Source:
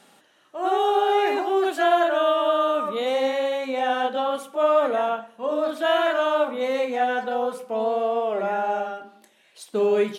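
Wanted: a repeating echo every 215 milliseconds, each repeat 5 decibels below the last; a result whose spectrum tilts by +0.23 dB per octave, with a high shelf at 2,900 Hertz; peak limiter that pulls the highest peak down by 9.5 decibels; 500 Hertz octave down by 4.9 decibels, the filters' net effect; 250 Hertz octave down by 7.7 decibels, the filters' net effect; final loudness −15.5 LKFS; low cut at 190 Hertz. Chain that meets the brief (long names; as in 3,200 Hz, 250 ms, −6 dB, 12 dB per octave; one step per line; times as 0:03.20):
high-pass filter 190 Hz
parametric band 250 Hz −7.5 dB
parametric band 500 Hz −4.5 dB
high-shelf EQ 2,900 Hz −3.5 dB
brickwall limiter −20.5 dBFS
repeating echo 215 ms, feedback 56%, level −5 dB
level +12.5 dB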